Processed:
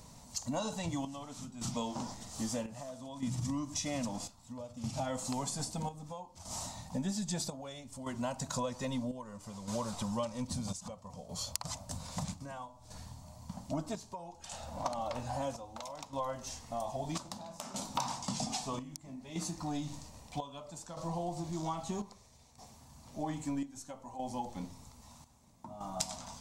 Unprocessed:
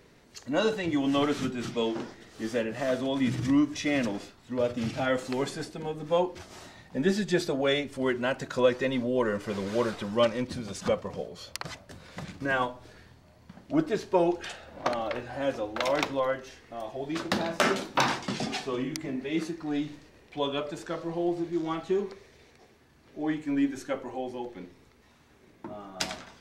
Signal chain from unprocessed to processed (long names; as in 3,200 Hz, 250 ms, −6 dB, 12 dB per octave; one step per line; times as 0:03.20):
drawn EQ curve 100 Hz 0 dB, 250 Hz −4 dB, 370 Hz −21 dB, 610 Hz −5 dB, 970 Hz +1 dB, 1,600 Hz −17 dB, 3,100 Hz −9 dB, 7,500 Hz +8 dB, 13,000 Hz +1 dB
downward compressor 6 to 1, threshold −41 dBFS, peak gain reduction 18 dB
square-wave tremolo 0.62 Hz, depth 65%, duty 65%
level +7.5 dB